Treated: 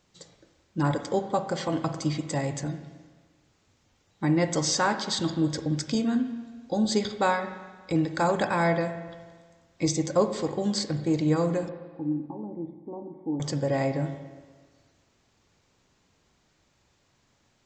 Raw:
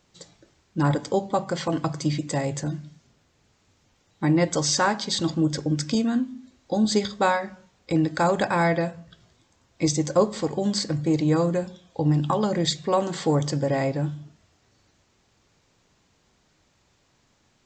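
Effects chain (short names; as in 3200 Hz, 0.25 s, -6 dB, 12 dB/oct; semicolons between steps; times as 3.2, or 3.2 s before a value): 11.69–13.4 vocal tract filter u; spring tank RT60 1.5 s, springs 43/59 ms, chirp 55 ms, DRR 9 dB; gain -3 dB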